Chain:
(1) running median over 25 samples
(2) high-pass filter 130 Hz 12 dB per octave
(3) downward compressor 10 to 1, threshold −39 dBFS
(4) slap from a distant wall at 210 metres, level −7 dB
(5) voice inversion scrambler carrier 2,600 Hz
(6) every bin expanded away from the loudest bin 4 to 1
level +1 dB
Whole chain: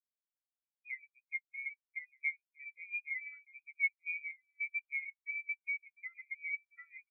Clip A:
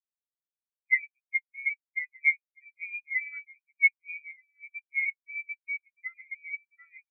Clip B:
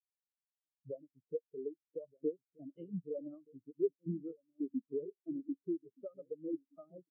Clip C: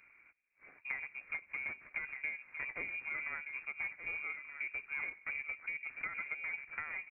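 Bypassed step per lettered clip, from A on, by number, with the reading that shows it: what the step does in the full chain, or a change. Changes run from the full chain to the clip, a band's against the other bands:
3, change in crest factor +2.0 dB
5, change in integrated loudness −3.0 LU
6, change in momentary loudness spread −11 LU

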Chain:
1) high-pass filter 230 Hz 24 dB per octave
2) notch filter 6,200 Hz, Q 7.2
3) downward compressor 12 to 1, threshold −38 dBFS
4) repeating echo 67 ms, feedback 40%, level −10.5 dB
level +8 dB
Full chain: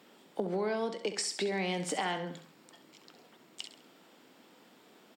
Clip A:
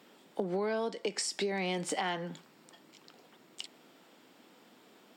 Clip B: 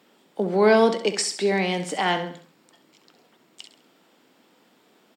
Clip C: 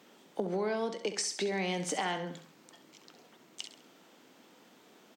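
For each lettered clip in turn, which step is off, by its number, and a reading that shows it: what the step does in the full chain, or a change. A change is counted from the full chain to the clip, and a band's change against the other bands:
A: 4, echo-to-direct ratio −9.5 dB to none audible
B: 3, average gain reduction 9.0 dB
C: 2, 8 kHz band +2.0 dB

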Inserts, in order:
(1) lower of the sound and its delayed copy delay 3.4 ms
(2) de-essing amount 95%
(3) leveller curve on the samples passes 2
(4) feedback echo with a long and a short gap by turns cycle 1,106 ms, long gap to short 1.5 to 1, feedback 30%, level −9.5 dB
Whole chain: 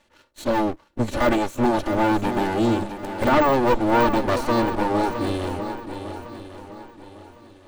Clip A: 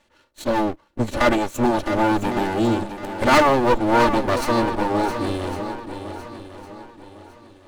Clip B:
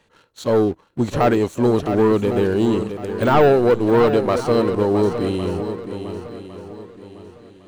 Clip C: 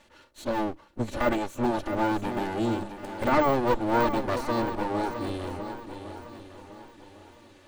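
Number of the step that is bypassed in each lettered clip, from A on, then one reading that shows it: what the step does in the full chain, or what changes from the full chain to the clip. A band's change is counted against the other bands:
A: 2, 8 kHz band +3.0 dB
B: 1, 500 Hz band +6.5 dB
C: 3, change in crest factor +5.0 dB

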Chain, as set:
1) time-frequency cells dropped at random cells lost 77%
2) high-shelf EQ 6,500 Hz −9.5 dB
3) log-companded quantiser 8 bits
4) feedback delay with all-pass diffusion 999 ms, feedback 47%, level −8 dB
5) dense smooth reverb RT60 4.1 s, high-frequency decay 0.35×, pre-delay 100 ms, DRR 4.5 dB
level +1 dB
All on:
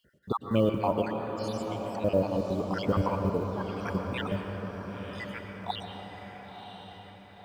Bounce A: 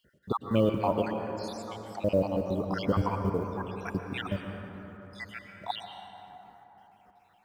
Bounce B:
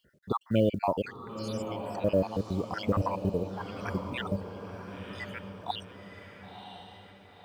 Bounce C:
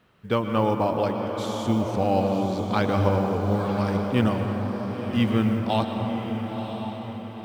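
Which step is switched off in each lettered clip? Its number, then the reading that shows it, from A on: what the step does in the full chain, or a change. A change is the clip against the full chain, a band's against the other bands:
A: 4, echo-to-direct ratio −2.0 dB to −4.5 dB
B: 5, echo-to-direct ratio −2.0 dB to −7.0 dB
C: 1, 250 Hz band +2.5 dB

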